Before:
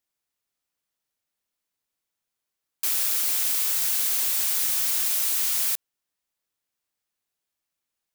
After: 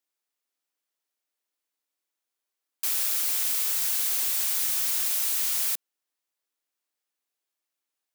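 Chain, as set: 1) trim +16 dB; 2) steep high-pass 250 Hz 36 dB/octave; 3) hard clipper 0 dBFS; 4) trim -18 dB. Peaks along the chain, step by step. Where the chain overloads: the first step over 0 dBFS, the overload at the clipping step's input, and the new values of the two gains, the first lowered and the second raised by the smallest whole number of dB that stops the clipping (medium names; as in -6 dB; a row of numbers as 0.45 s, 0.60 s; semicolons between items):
+4.5 dBFS, +4.5 dBFS, 0.0 dBFS, -18.0 dBFS; step 1, 4.5 dB; step 1 +11 dB, step 4 -13 dB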